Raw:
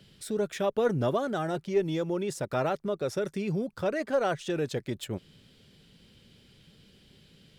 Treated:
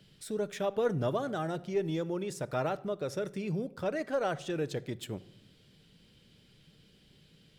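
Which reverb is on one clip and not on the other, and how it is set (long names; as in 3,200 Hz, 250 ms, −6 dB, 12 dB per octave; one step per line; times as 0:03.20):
rectangular room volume 2,400 cubic metres, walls furnished, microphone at 0.51 metres
level −4 dB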